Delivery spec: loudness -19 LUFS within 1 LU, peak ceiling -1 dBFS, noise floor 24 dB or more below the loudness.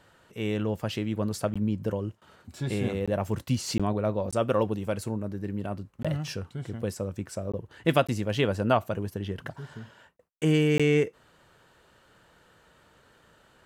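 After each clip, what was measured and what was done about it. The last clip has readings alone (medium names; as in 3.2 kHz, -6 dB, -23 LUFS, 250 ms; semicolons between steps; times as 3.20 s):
dropouts 8; longest dropout 16 ms; loudness -29.0 LUFS; peak level -7.5 dBFS; loudness target -19.0 LUFS
-> interpolate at 1.54/3.06/3.78/4.31/6.03/7.52/8.07/10.78 s, 16 ms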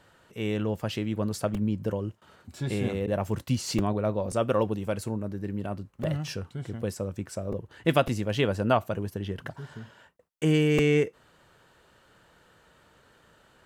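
dropouts 0; loudness -29.0 LUFS; peak level -7.5 dBFS; loudness target -19.0 LUFS
-> trim +10 dB; peak limiter -1 dBFS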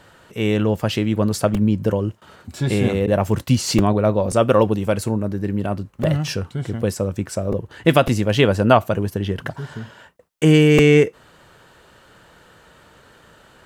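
loudness -19.0 LUFS; peak level -1.0 dBFS; noise floor -51 dBFS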